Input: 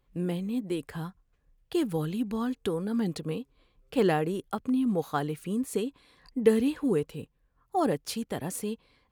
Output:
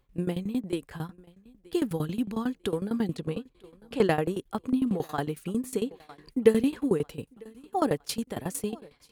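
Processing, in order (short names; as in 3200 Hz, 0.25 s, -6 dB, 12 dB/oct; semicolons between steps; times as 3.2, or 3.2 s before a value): 3.17–4.04 LPF 11000 Hz 12 dB/oct; thinning echo 0.948 s, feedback 41%, high-pass 160 Hz, level -21.5 dB; tremolo saw down 11 Hz, depth 90%; gain +4.5 dB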